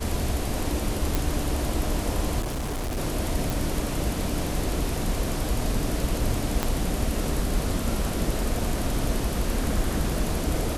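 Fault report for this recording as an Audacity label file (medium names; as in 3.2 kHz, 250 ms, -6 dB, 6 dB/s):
1.150000	1.150000	pop
2.400000	2.980000	clipped -26 dBFS
3.500000	3.500000	pop
6.630000	6.630000	pop -9 dBFS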